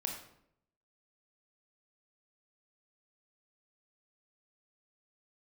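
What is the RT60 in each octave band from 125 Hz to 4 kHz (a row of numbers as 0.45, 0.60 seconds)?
0.90, 0.85, 0.80, 0.65, 0.60, 0.50 seconds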